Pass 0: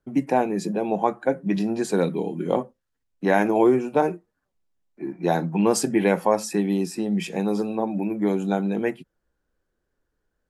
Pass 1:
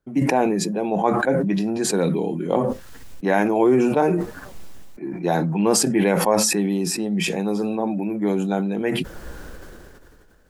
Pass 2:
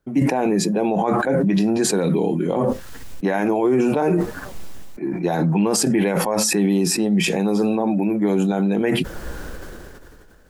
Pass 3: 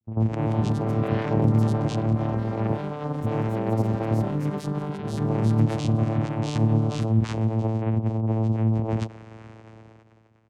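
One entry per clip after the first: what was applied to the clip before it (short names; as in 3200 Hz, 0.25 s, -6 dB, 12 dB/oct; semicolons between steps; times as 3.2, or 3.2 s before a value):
sustainer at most 23 dB/s
limiter -15.5 dBFS, peak gain reduction 10 dB; gain +5 dB
bands offset in time lows, highs 40 ms, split 300 Hz; vocoder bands 4, saw 111 Hz; echoes that change speed 0.263 s, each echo +5 st, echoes 3, each echo -6 dB; gain -2.5 dB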